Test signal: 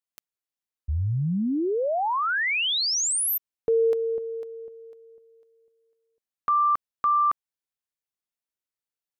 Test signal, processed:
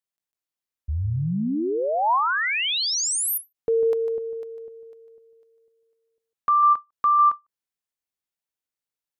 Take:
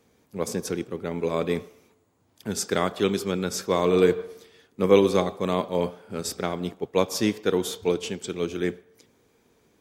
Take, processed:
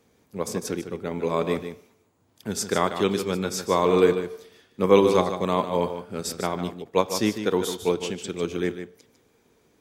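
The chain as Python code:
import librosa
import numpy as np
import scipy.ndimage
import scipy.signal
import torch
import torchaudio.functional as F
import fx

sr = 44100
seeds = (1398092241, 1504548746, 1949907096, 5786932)

y = fx.dynamic_eq(x, sr, hz=970.0, q=2.6, threshold_db=-39.0, ratio=4.0, max_db=6)
y = y + 10.0 ** (-9.5 / 20.0) * np.pad(y, (int(150 * sr / 1000.0), 0))[:len(y)]
y = fx.end_taper(y, sr, db_per_s=380.0)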